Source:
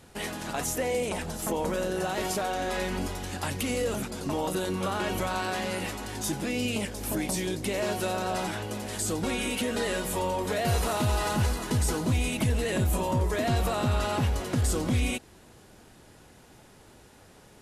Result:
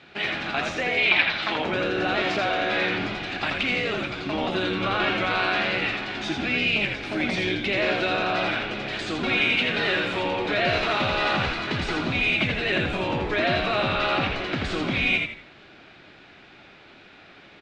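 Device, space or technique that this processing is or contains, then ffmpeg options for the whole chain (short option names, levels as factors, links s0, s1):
kitchen radio: -filter_complex "[0:a]highpass=220,equalizer=f=240:t=q:w=4:g=-7,equalizer=f=490:t=q:w=4:g=-9,equalizer=f=950:t=q:w=4:g=-7,equalizer=f=1500:t=q:w=4:g=3,equalizer=f=2400:t=q:w=4:g=8,equalizer=f=3800:t=q:w=4:g=4,lowpass=f=4000:w=0.5412,lowpass=f=4000:w=1.3066,asettb=1/sr,asplit=3[s0][s1][s2];[s0]atrim=end=0.974[s3];[s1]atrim=start=0.97:end=1.56,asetpts=PTS-STARTPTS,afade=t=in:d=0.004:c=qsin,afade=t=out:st=0.586:d=0.004:c=qsin,equalizer=f=125:t=o:w=1:g=-11,equalizer=f=500:t=o:w=1:g=-7,equalizer=f=1000:t=o:w=1:g=5,equalizer=f=2000:t=o:w=1:g=6,equalizer=f=4000:t=o:w=1:g=11,equalizer=f=8000:t=o:w=1:g=-11[s4];[s2]atrim=start=1.556[s5];[s3][s4]acrossfade=d=0.004:c1=hsin:c2=qsin[s6];[s6][s5]acrossfade=d=0.004:c1=qsin:c2=hsin,asplit=5[s7][s8][s9][s10][s11];[s8]adelay=82,afreqshift=-73,volume=0.631[s12];[s9]adelay=164,afreqshift=-146,volume=0.209[s13];[s10]adelay=246,afreqshift=-219,volume=0.0684[s14];[s11]adelay=328,afreqshift=-292,volume=0.0226[s15];[s7][s12][s13][s14][s15]amix=inputs=5:normalize=0,volume=2"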